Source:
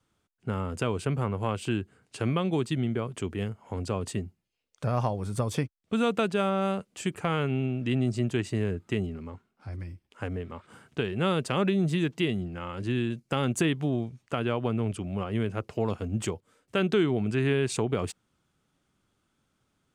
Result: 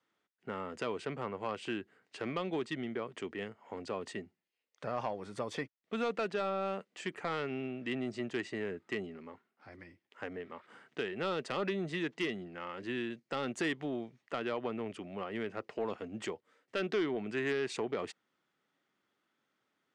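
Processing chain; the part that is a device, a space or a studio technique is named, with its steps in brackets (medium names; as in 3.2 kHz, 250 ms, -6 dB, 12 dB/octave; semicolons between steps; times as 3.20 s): intercom (band-pass 300–4900 Hz; peaking EQ 1.9 kHz +8 dB 0.27 oct; saturation -21 dBFS, distortion -15 dB); trim -4 dB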